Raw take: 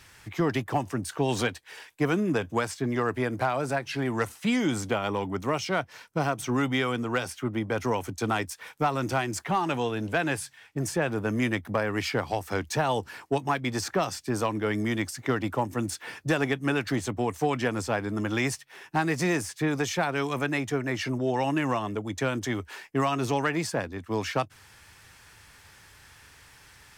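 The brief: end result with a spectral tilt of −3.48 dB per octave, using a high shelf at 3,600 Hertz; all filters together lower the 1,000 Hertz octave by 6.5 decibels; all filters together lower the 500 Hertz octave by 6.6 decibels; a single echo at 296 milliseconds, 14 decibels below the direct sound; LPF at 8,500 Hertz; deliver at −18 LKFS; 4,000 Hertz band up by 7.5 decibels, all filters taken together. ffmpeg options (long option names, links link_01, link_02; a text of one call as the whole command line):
ffmpeg -i in.wav -af "lowpass=8500,equalizer=frequency=500:width_type=o:gain=-7,equalizer=frequency=1000:width_type=o:gain=-7.5,highshelf=frequency=3600:gain=8.5,equalizer=frequency=4000:width_type=o:gain=5,aecho=1:1:296:0.2,volume=11dB" out.wav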